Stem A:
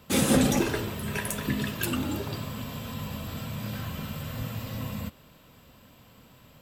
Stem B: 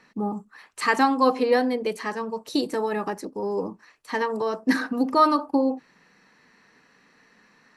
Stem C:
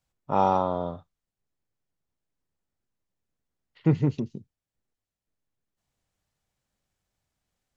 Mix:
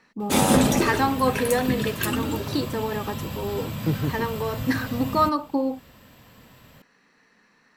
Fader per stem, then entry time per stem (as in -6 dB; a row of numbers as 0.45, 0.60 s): +3.0, -2.5, -3.5 dB; 0.20, 0.00, 0.00 s